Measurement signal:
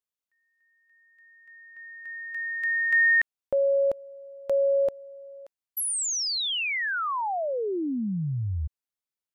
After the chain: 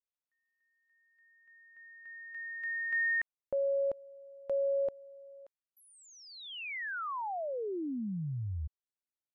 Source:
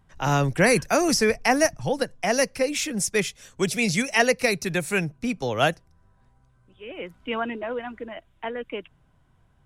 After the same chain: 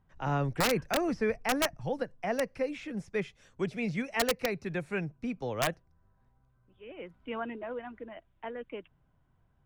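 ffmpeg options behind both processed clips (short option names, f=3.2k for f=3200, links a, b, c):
-filter_complex "[0:a]acrossover=split=3000[a][b];[b]acompressor=threshold=-40dB:ratio=4:attack=1:release=60[c];[a][c]amix=inputs=2:normalize=0,aemphasis=mode=reproduction:type=75fm,aeval=exprs='(mod(3.55*val(0)+1,2)-1)/3.55':c=same,volume=-8.5dB"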